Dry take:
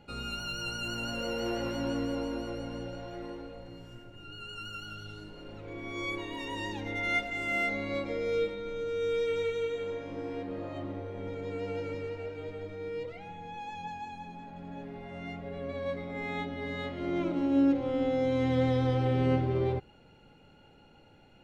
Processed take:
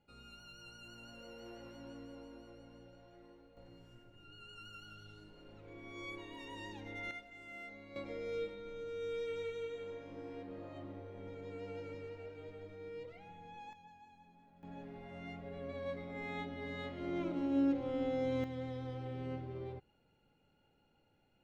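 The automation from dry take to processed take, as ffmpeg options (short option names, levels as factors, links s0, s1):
-af "asetnsamples=n=441:p=0,asendcmd='3.57 volume volume -11dB;7.11 volume volume -19.5dB;7.96 volume volume -10dB;13.73 volume volume -19dB;14.63 volume volume -7dB;18.44 volume volume -15.5dB',volume=0.119"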